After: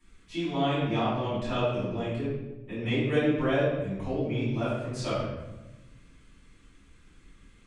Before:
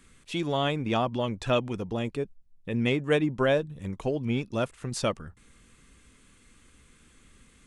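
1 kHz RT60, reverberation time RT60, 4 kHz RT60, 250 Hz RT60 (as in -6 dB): 0.95 s, 1.1 s, 0.70 s, 1.5 s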